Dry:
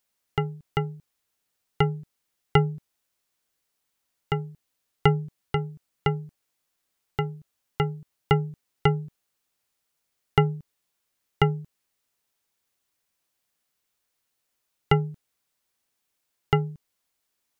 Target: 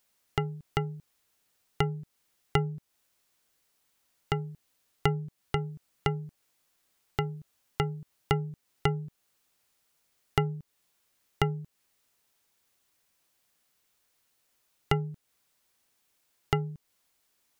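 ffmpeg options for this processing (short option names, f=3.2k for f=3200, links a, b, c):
-af "acompressor=threshold=-37dB:ratio=2,volume=5dB"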